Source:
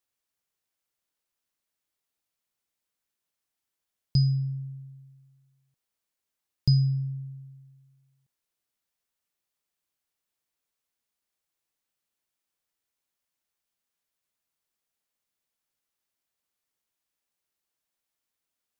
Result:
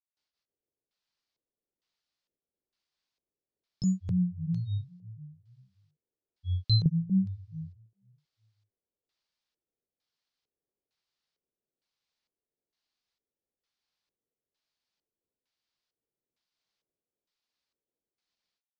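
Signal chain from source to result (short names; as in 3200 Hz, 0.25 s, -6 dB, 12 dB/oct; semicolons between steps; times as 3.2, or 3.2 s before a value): grains 0.218 s, grains 14/s, spray 0.513 s, pitch spread up and down by 7 st; LFO low-pass square 1.1 Hz 450–4600 Hz; gain +1.5 dB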